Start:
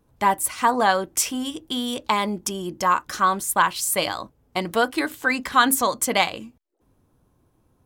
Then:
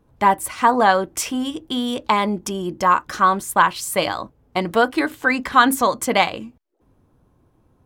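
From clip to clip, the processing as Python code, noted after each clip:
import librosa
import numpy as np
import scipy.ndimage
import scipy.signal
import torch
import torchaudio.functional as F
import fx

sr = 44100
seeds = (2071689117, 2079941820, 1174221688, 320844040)

y = fx.high_shelf(x, sr, hz=3900.0, db=-9.5)
y = y * librosa.db_to_amplitude(4.5)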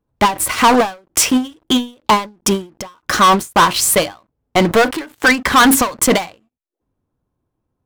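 y = fx.leveller(x, sr, passes=5)
y = fx.end_taper(y, sr, db_per_s=190.0)
y = y * librosa.db_to_amplitude(-4.5)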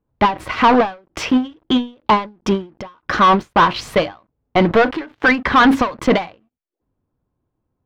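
y = fx.air_absorb(x, sr, metres=260.0)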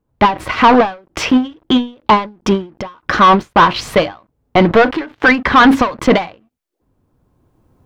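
y = fx.recorder_agc(x, sr, target_db=-12.0, rise_db_per_s=10.0, max_gain_db=30)
y = y * librosa.db_to_amplitude(3.5)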